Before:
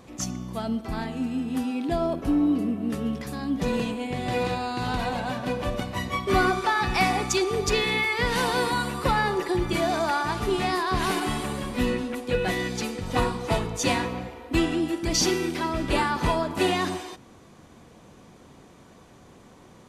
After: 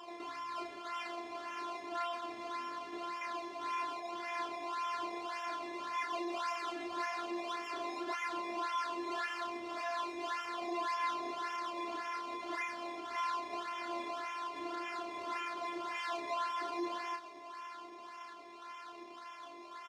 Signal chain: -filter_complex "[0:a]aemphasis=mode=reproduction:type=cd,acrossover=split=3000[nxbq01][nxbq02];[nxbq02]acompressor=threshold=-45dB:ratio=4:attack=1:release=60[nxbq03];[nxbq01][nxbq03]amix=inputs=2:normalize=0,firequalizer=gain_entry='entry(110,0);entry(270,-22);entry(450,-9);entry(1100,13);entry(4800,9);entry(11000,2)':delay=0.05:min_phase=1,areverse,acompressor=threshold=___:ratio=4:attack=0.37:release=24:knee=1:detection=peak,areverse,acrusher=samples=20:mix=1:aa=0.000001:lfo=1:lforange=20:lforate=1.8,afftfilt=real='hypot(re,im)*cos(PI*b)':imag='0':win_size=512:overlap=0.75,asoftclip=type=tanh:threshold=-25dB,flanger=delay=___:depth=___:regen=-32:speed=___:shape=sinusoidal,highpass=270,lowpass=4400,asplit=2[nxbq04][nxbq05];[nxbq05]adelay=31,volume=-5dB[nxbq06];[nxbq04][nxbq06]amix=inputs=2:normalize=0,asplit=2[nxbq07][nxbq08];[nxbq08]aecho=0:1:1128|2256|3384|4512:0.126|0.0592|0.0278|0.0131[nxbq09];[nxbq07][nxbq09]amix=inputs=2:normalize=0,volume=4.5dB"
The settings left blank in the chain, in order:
-35dB, 8.3, 2.6, 0.94